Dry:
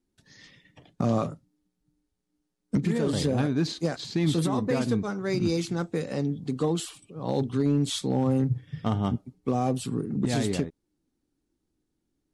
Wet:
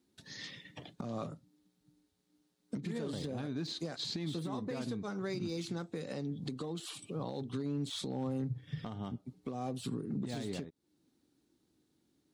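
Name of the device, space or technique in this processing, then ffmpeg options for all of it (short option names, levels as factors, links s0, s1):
broadcast voice chain: -af "highpass=100,deesser=0.85,acompressor=threshold=0.0178:ratio=5,equalizer=f=3900:t=o:w=0.51:g=5.5,alimiter=level_in=2.82:limit=0.0631:level=0:latency=1:release=463,volume=0.355,volume=1.68"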